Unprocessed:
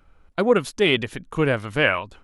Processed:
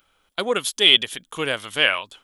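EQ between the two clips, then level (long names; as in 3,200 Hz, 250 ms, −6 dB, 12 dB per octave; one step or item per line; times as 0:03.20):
RIAA equalisation recording
parametric band 3,300 Hz +12 dB 0.3 octaves
−2.5 dB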